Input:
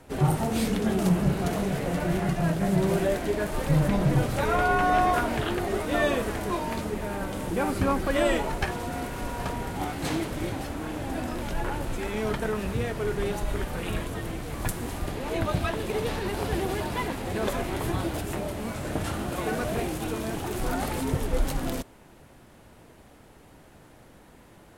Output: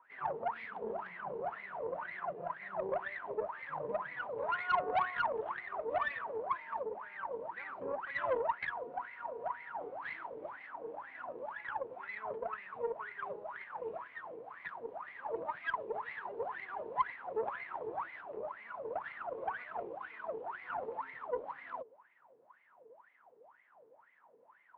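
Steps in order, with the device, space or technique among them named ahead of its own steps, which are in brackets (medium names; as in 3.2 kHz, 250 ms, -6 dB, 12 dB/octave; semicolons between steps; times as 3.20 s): wah-wah guitar rig (wah-wah 2 Hz 440–2100 Hz, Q 21; valve stage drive 35 dB, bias 0.5; cabinet simulation 76–3500 Hz, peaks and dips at 77 Hz -9 dB, 320 Hz -3 dB, 1 kHz +7 dB); trim +8 dB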